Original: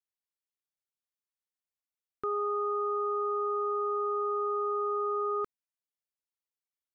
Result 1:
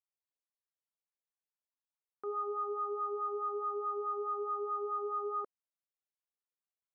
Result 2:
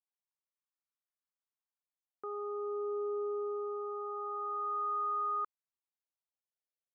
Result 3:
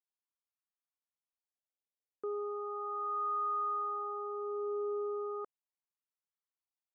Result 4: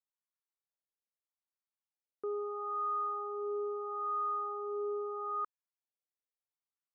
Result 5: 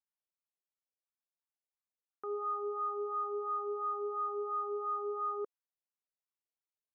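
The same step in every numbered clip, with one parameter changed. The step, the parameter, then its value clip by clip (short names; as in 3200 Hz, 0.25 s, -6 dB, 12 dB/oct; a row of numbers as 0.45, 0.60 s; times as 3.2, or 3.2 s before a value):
wah, rate: 4.7, 0.24, 0.36, 0.77, 2.9 Hz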